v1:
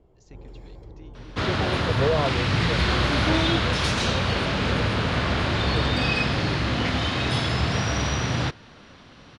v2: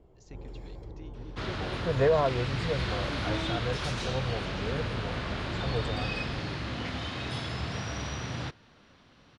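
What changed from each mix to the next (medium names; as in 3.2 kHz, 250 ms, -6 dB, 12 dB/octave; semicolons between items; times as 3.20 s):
second sound -10.5 dB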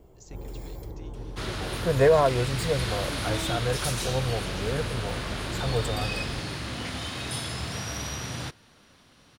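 first sound +4.5 dB; master: remove distance through air 140 m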